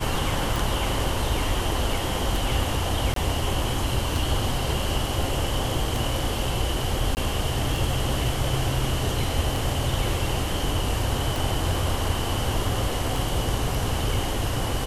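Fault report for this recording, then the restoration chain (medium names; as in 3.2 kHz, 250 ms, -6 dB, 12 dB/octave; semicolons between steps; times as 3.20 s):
tick 33 1/3 rpm
3.14–3.16 s: dropout 23 ms
7.15–7.17 s: dropout 19 ms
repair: de-click; interpolate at 3.14 s, 23 ms; interpolate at 7.15 s, 19 ms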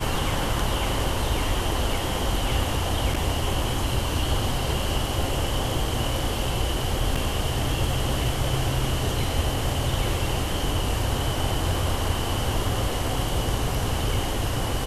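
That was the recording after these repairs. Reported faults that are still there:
nothing left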